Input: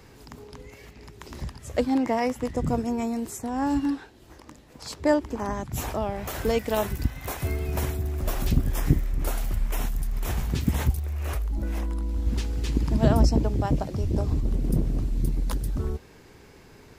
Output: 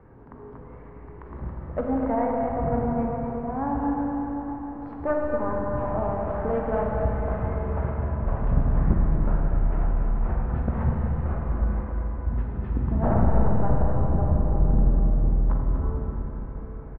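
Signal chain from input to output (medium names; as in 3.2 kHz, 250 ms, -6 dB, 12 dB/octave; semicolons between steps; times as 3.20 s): one-sided wavefolder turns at -16 dBFS; low-pass 1.4 kHz 24 dB/octave; de-hum 49.36 Hz, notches 29; dynamic bell 320 Hz, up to -6 dB, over -40 dBFS, Q 1.7; delay 244 ms -9 dB; reverberation RT60 4.7 s, pre-delay 34 ms, DRR -1.5 dB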